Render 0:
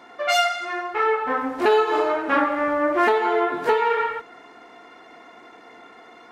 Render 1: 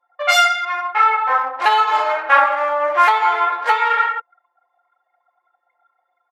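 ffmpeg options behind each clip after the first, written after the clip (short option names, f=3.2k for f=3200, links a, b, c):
-af "anlmdn=25.1,highpass=f=690:w=0.5412,highpass=f=690:w=1.3066,aecho=1:1:3.7:0.6,volume=6.5dB"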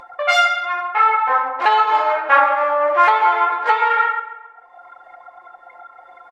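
-filter_complex "[0:a]aemphasis=mode=reproduction:type=bsi,acompressor=mode=upward:threshold=-21dB:ratio=2.5,asplit=2[a][b];[b]adelay=135,lowpass=f=3.1k:p=1,volume=-12.5dB,asplit=2[c][d];[d]adelay=135,lowpass=f=3.1k:p=1,volume=0.48,asplit=2[e][f];[f]adelay=135,lowpass=f=3.1k:p=1,volume=0.48,asplit=2[g][h];[h]adelay=135,lowpass=f=3.1k:p=1,volume=0.48,asplit=2[i][j];[j]adelay=135,lowpass=f=3.1k:p=1,volume=0.48[k];[a][c][e][g][i][k]amix=inputs=6:normalize=0"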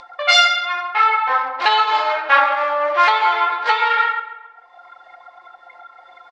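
-af "lowpass=f=4.4k:t=q:w=2,crystalizer=i=4:c=0,volume=-3.5dB"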